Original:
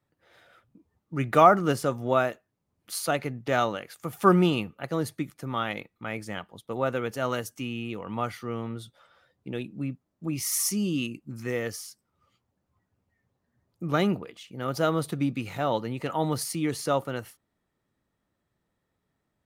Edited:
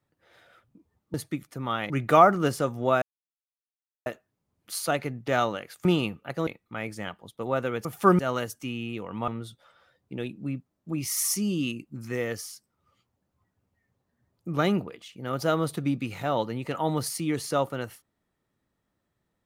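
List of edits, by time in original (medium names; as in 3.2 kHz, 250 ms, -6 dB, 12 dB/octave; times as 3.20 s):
2.26 s: insert silence 1.04 s
4.05–4.39 s: move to 7.15 s
5.01–5.77 s: move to 1.14 s
8.24–8.63 s: delete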